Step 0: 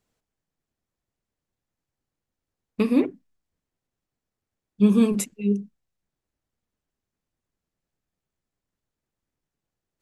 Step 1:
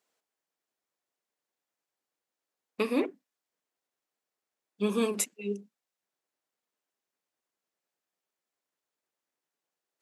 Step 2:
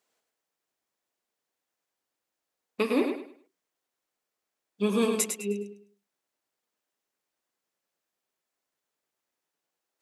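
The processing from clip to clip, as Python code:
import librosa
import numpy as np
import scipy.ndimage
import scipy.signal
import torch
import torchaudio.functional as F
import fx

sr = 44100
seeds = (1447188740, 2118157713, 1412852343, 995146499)

y1 = scipy.signal.sosfilt(scipy.signal.butter(2, 460.0, 'highpass', fs=sr, output='sos'), x)
y2 = fx.echo_feedback(y1, sr, ms=103, feedback_pct=29, wet_db=-6)
y2 = y2 * 10.0 ** (2.0 / 20.0)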